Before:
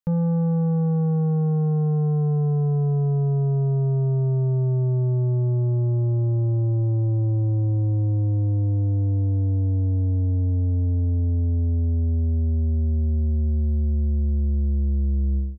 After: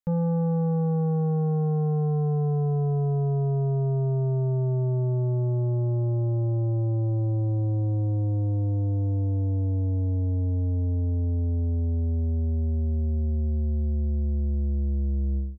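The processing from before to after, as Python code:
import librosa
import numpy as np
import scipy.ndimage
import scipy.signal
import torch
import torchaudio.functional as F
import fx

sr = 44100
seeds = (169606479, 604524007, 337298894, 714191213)

y = fx.dynamic_eq(x, sr, hz=690.0, q=0.76, threshold_db=-39.0, ratio=4.0, max_db=6)
y = y * 10.0 ** (-4.0 / 20.0)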